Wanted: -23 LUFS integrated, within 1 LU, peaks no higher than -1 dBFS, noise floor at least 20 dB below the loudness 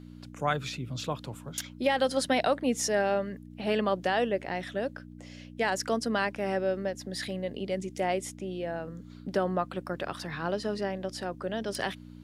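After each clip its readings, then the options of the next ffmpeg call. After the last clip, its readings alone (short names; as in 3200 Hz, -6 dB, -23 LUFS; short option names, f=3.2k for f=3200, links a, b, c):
hum 60 Hz; harmonics up to 300 Hz; hum level -44 dBFS; loudness -31.0 LUFS; peak -14.0 dBFS; loudness target -23.0 LUFS
-> -af "bandreject=f=60:t=h:w=4,bandreject=f=120:t=h:w=4,bandreject=f=180:t=h:w=4,bandreject=f=240:t=h:w=4,bandreject=f=300:t=h:w=4"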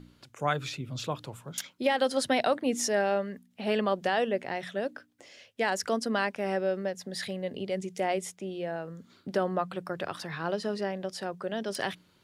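hum none; loudness -31.5 LUFS; peak -14.0 dBFS; loudness target -23.0 LUFS
-> -af "volume=8.5dB"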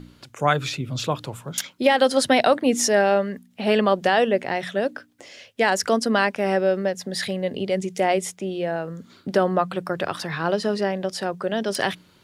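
loudness -23.0 LUFS; peak -5.5 dBFS; noise floor -57 dBFS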